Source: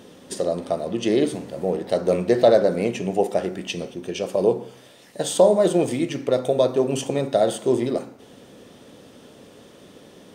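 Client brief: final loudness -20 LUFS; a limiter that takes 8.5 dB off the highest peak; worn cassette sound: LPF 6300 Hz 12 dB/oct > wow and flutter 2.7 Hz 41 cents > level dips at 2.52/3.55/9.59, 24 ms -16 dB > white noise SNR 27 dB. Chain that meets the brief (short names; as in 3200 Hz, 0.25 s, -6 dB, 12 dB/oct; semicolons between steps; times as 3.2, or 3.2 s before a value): limiter -12 dBFS; LPF 6300 Hz 12 dB/oct; wow and flutter 2.7 Hz 41 cents; level dips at 2.52/3.55/9.59, 24 ms -16 dB; white noise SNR 27 dB; gain +4.5 dB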